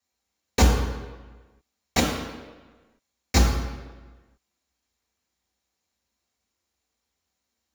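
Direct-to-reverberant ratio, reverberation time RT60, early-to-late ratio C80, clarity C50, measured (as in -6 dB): -3.5 dB, 1.3 s, 5.0 dB, 3.0 dB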